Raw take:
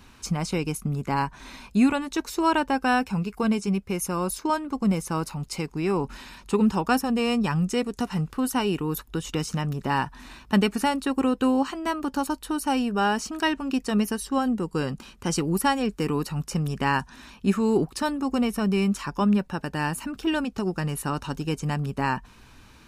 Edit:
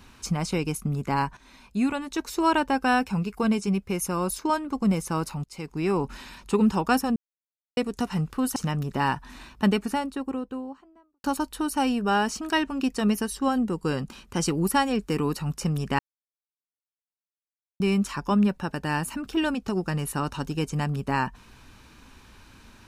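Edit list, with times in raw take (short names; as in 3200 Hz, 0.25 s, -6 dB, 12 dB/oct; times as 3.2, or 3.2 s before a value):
1.37–2.43 fade in, from -13 dB
5.44–5.82 fade in, from -21 dB
7.16–7.77 mute
8.56–9.46 cut
10.15–12.14 studio fade out
16.89–18.7 mute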